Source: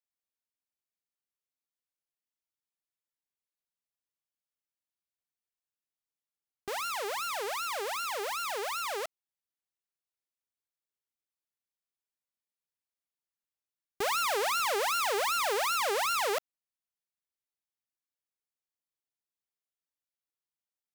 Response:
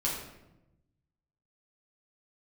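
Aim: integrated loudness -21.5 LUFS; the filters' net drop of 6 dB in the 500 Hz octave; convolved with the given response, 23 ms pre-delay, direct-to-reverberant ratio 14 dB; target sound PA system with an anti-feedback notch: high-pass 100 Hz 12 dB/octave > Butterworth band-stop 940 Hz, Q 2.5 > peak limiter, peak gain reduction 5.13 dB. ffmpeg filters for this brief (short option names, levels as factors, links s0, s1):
-filter_complex "[0:a]equalizer=f=500:t=o:g=-7.5,asplit=2[s0][s1];[1:a]atrim=start_sample=2205,adelay=23[s2];[s1][s2]afir=irnorm=-1:irlink=0,volume=0.1[s3];[s0][s3]amix=inputs=2:normalize=0,highpass=100,asuperstop=centerf=940:order=8:qfactor=2.5,volume=4.22,alimiter=limit=0.282:level=0:latency=1"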